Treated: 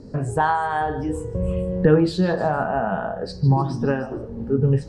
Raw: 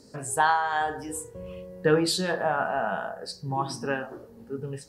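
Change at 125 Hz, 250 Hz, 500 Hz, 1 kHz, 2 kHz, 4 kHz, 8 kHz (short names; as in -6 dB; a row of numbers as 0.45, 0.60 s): +15.0 dB, +10.5 dB, +6.5 dB, +3.0 dB, -0.5 dB, -5.5 dB, under -10 dB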